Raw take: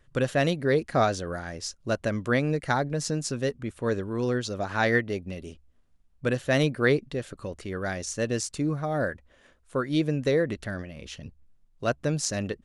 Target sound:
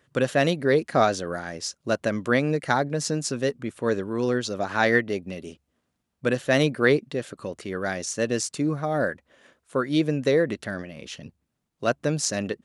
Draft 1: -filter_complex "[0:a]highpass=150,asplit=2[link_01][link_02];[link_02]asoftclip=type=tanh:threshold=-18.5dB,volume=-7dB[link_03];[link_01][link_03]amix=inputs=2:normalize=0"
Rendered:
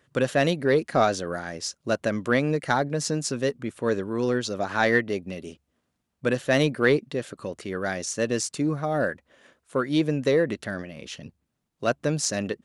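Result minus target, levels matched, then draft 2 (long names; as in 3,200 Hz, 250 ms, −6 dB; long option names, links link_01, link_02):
soft clipping: distortion +16 dB
-filter_complex "[0:a]highpass=150,asplit=2[link_01][link_02];[link_02]asoftclip=type=tanh:threshold=-7dB,volume=-7dB[link_03];[link_01][link_03]amix=inputs=2:normalize=0"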